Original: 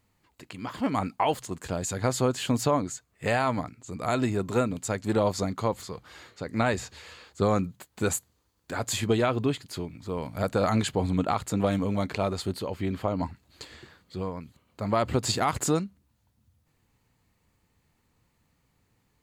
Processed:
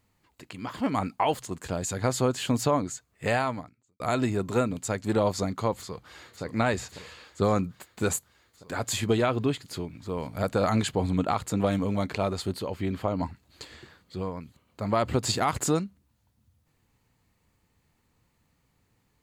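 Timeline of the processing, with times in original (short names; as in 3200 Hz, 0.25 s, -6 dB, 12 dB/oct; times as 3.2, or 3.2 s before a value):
3.38–4 fade out quadratic
5.78–6.43 echo throw 0.55 s, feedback 80%, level -10 dB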